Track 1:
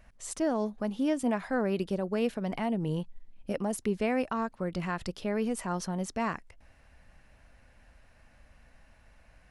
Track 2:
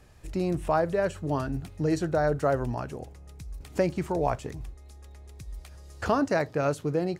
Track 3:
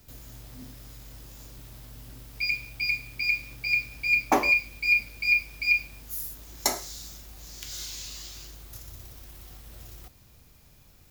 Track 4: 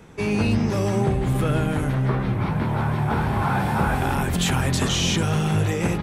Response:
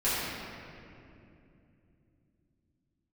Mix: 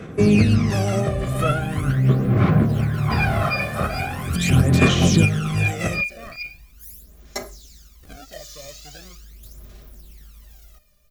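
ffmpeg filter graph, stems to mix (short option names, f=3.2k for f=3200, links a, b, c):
-filter_complex "[0:a]dynaudnorm=f=400:g=9:m=8.5dB,volume=-19dB,asplit=2[a][b];[1:a]acrusher=samples=41:mix=1:aa=0.000001:lfo=1:lforange=24.6:lforate=0.72,adelay=2000,volume=-18dB[c];[2:a]dynaudnorm=f=120:g=17:m=11.5dB,aecho=1:1:4.9:0.82,adelay=700,volume=-18.5dB[d];[3:a]highpass=69,volume=2dB[e];[b]apad=whole_len=265506[f];[e][f]sidechaincompress=threshold=-42dB:ratio=8:attack=6.7:release=280[g];[a][c][d][g]amix=inputs=4:normalize=0,aphaser=in_gain=1:out_gain=1:delay=1.7:decay=0.68:speed=0.41:type=sinusoidal,asuperstop=centerf=900:order=4:qfactor=4.2"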